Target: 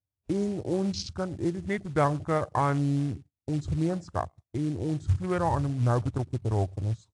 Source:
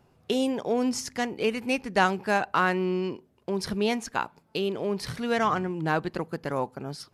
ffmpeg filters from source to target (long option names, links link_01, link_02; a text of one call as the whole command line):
ffmpeg -i in.wav -filter_complex "[0:a]equalizer=frequency=125:width_type=o:width=1:gain=11,equalizer=frequency=250:width_type=o:width=1:gain=-4,equalizer=frequency=4000:width_type=o:width=1:gain=-10,equalizer=frequency=8000:width_type=o:width=1:gain=10,asetrate=34006,aresample=44100,atempo=1.29684,asplit=2[link_01][link_02];[link_02]adelay=106,lowpass=frequency=1400:poles=1,volume=-22dB,asplit=2[link_03][link_04];[link_04]adelay=106,lowpass=frequency=1400:poles=1,volume=0.37,asplit=2[link_05][link_06];[link_06]adelay=106,lowpass=frequency=1400:poles=1,volume=0.37[link_07];[link_03][link_05][link_07]amix=inputs=3:normalize=0[link_08];[link_01][link_08]amix=inputs=2:normalize=0,agate=range=-20dB:threshold=-46dB:ratio=16:detection=peak,afwtdn=0.0224,acrusher=bits=5:mode=log:mix=0:aa=0.000001,equalizer=frequency=76:width=1.1:gain=8,volume=-2dB" -ar 22050 -c:a aac -b:a 96k out.aac